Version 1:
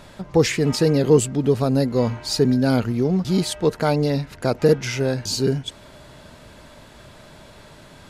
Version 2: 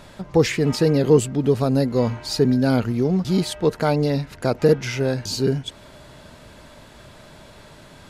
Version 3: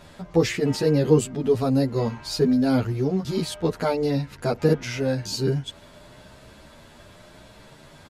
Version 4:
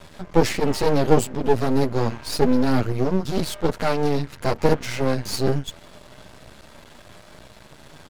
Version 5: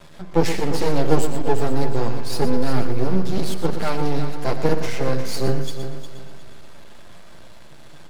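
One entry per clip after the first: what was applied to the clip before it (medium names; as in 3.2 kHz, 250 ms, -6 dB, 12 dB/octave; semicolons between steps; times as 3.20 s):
dynamic bell 7.8 kHz, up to -4 dB, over -38 dBFS, Q 0.75
endless flanger 10.2 ms +0.88 Hz
half-wave rectifier; trim +6 dB
on a send: multi-head delay 119 ms, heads first and third, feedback 44%, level -10.5 dB; on the sum: simulated room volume 2500 m³, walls furnished, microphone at 0.8 m; trim -2.5 dB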